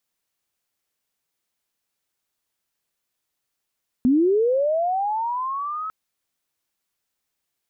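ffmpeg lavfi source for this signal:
-f lavfi -i "aevalsrc='pow(10,(-13.5-13*t/1.85)/20)*sin(2*PI*(240*t+1060*t*t/(2*1.85)))':d=1.85:s=44100"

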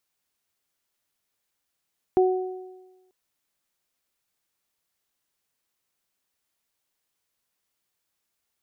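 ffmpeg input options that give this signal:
-f lavfi -i "aevalsrc='0.188*pow(10,-3*t/1.17)*sin(2*PI*371*t)+0.075*pow(10,-3*t/1.09)*sin(2*PI*742*t)':d=0.94:s=44100"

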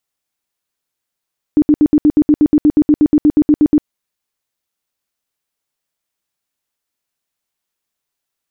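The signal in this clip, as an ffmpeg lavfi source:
-f lavfi -i "aevalsrc='0.531*sin(2*PI*299*mod(t,0.12))*lt(mod(t,0.12),15/299)':d=2.28:s=44100"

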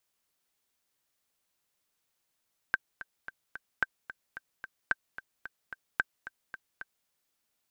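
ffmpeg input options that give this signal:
-f lavfi -i "aevalsrc='pow(10,(-12-15*gte(mod(t,4*60/221),60/221))/20)*sin(2*PI*1560*mod(t,60/221))*exp(-6.91*mod(t,60/221)/0.03)':d=4.34:s=44100"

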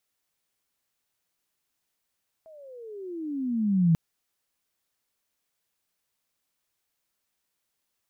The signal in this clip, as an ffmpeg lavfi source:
-f lavfi -i "aevalsrc='pow(10,(-16+30.5*(t/1.49-1))/20)*sin(2*PI*655*1.49/(-24.5*log(2)/12)*(exp(-24.5*log(2)/12*t/1.49)-1))':d=1.49:s=44100"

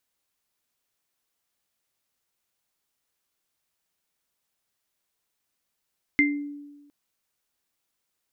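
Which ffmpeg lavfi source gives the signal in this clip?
-f lavfi -i "aevalsrc='0.112*pow(10,-3*t/1.23)*sin(2*PI*289*t)+0.2*pow(10,-3*t/0.3)*sin(2*PI*2090*t)':d=0.71:s=44100"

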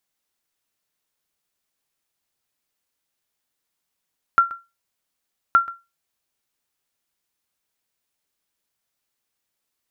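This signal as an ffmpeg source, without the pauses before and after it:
-f lavfi -i "aevalsrc='0.473*(sin(2*PI*1370*mod(t,1.17))*exp(-6.91*mod(t,1.17)/0.24)+0.106*sin(2*PI*1370*max(mod(t,1.17)-0.13,0))*exp(-6.91*max(mod(t,1.17)-0.13,0)/0.24))':d=2.34:s=44100"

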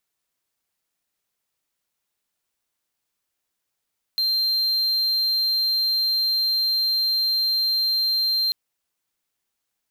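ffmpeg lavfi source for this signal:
-f lavfi -i "aevalsrc='0.141*(1-4*abs(mod(4160*t+0.25,1)-0.5))':d=4.34:s=44100"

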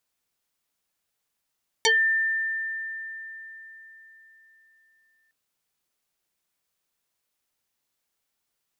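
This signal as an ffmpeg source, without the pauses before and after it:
-f lavfi -i "aevalsrc='0.158*pow(10,-3*t/4.14)*sin(2*PI*1790*t+4.8*pow(10,-3*t/0.17)*sin(2*PI*0.75*1790*t))':d=3.46:s=44100"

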